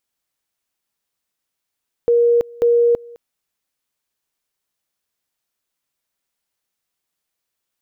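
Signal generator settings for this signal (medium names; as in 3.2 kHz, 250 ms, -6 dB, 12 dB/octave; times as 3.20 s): two-level tone 473 Hz -10.5 dBFS, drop 24.5 dB, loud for 0.33 s, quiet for 0.21 s, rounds 2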